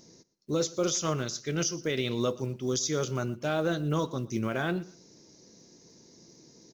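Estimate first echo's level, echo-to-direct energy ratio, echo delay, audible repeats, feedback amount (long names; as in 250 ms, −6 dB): −20.5 dB, −20.0 dB, 119 ms, 2, 26%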